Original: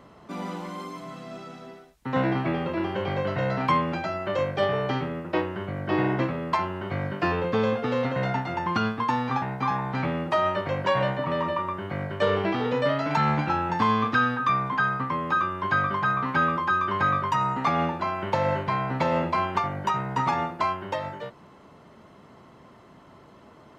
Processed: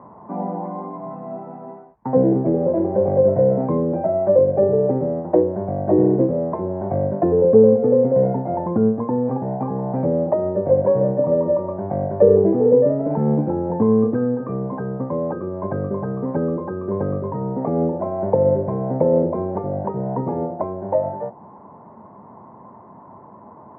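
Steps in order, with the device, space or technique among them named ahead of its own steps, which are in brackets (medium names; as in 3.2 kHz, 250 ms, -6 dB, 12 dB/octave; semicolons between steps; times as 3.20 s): envelope filter bass rig (touch-sensitive low-pass 460–1000 Hz down, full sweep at -21.5 dBFS; cabinet simulation 89–2100 Hz, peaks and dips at 100 Hz +5 dB, 210 Hz +6 dB, 1.3 kHz -8 dB); trim +3.5 dB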